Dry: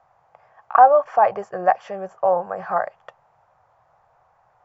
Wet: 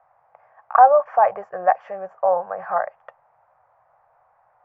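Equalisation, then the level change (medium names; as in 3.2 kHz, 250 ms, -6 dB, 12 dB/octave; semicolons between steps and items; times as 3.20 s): distance through air 86 m; bass shelf 370 Hz +4.5 dB; high-order bell 1.1 kHz +12 dB 2.6 oct; -12.5 dB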